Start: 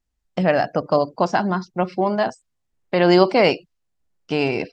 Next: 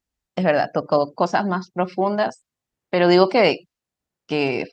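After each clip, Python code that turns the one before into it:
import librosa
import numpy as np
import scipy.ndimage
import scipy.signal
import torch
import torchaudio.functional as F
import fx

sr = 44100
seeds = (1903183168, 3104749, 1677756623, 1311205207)

y = fx.highpass(x, sr, hz=120.0, slope=6)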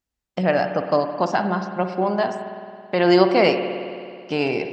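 y = fx.rev_spring(x, sr, rt60_s=2.3, pass_ms=(54,), chirp_ms=40, drr_db=7.0)
y = F.gain(torch.from_numpy(y), -1.5).numpy()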